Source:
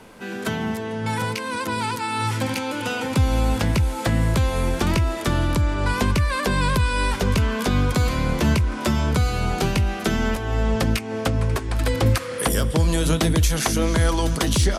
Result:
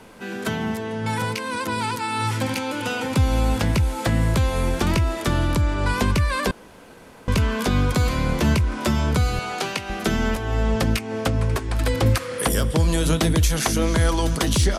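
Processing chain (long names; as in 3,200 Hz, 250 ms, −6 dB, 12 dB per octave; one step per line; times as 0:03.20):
0:06.51–0:07.28: fill with room tone
0:09.39–0:09.90: meter weighting curve A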